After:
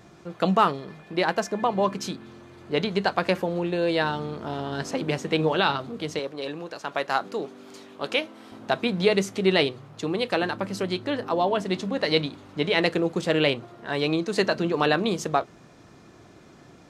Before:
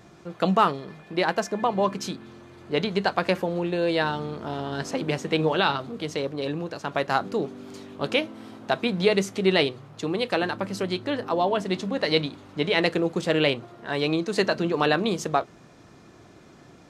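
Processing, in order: 6.19–8.52 HPF 450 Hz 6 dB/oct

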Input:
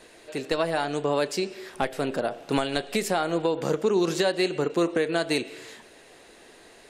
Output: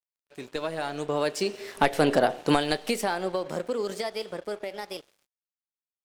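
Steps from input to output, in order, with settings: speed glide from 86% -> 142%; Doppler pass-by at 2.09, 17 m/s, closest 6.7 m; crossover distortion -55.5 dBFS; gain +6.5 dB

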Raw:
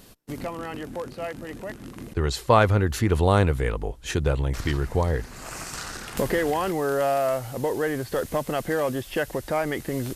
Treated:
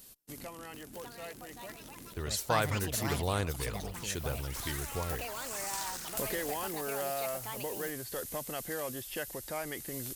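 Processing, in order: echoes that change speed 0.732 s, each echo +6 st, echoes 3, each echo -6 dB; pre-emphasis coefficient 0.8

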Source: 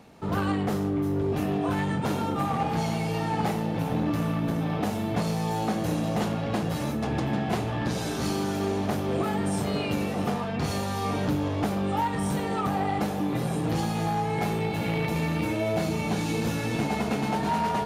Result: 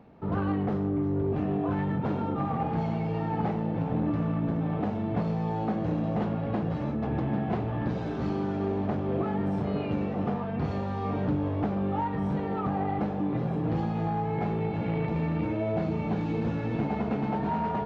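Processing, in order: tape spacing loss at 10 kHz 41 dB

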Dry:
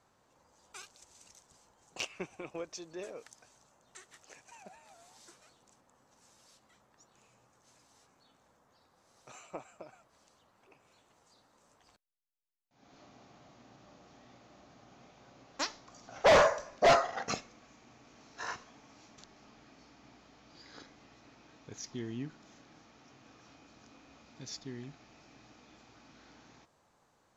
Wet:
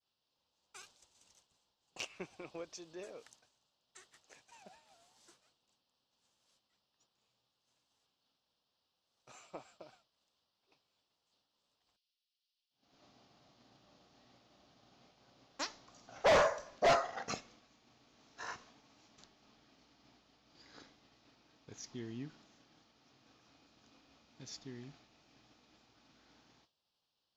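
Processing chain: band noise 2700–5400 Hz -66 dBFS; expander -53 dBFS; gain -5 dB

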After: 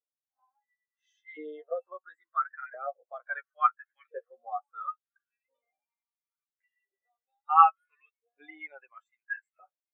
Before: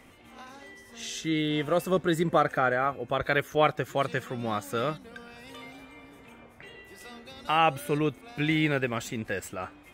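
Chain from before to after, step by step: LFO high-pass saw up 0.73 Hz 480–2100 Hz; flange 0.35 Hz, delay 6.6 ms, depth 7 ms, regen +15%; spectral expander 2.5:1; gain +4.5 dB

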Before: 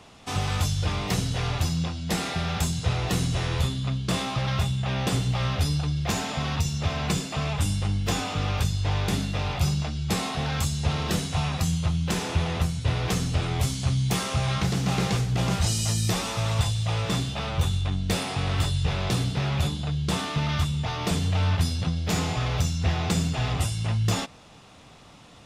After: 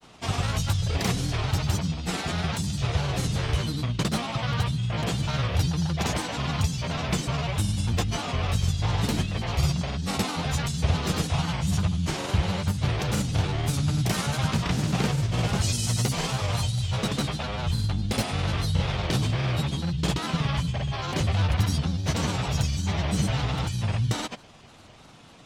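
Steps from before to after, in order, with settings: grains, pitch spread up and down by 3 st; gain +1 dB

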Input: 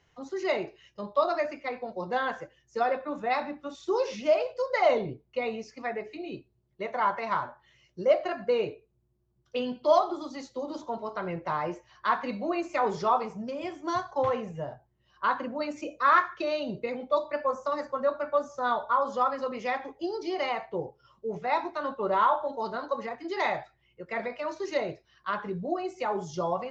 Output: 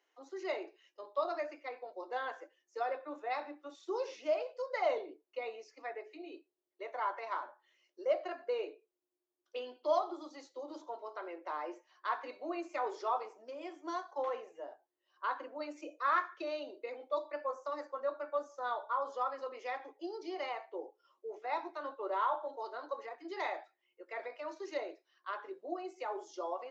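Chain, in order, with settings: elliptic high-pass 300 Hz, stop band 40 dB; gain -9 dB

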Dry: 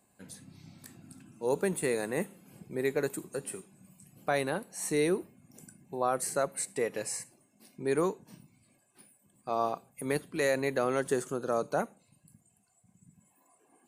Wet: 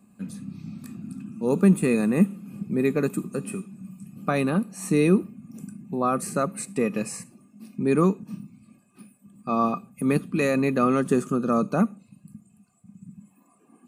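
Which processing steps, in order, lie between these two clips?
low shelf 320 Hz +6 dB; small resonant body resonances 210/1200/2500 Hz, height 17 dB, ringing for 45 ms

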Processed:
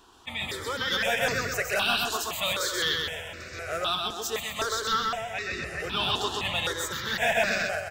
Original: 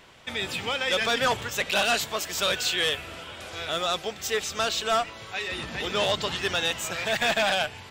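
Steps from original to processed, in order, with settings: 0.65–1.47 high shelf 11000 Hz +9 dB; feedback echo 0.129 s, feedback 50%, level -3 dB; step phaser 3.9 Hz 570–3200 Hz

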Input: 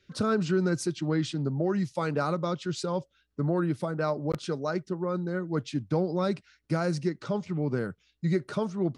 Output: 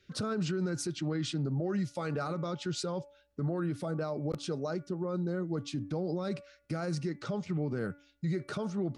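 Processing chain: notch 980 Hz, Q 10; de-hum 286.8 Hz, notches 9; 3.85–6.25 dynamic EQ 1800 Hz, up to -6 dB, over -50 dBFS, Q 1.3; limiter -25.5 dBFS, peak gain reduction 9.5 dB

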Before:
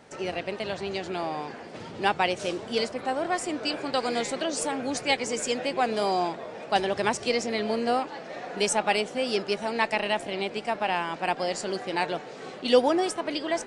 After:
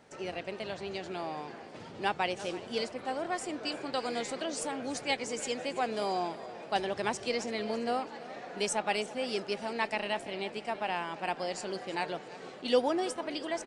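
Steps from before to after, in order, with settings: feedback echo 0.334 s, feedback 38%, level -17 dB; gain -6.5 dB

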